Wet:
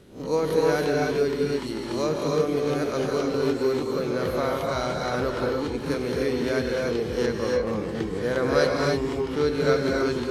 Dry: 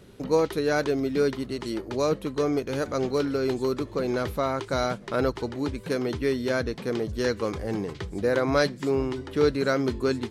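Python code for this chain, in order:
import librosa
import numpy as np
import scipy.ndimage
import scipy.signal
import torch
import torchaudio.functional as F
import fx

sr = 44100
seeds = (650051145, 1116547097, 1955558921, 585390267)

y = fx.spec_swells(x, sr, rise_s=0.36)
y = fx.high_shelf(y, sr, hz=4700.0, db=-11.5, at=(7.26, 7.67))
y = fx.rev_gated(y, sr, seeds[0], gate_ms=330, shape='rising', drr_db=-1.0)
y = F.gain(torch.from_numpy(y), -3.0).numpy()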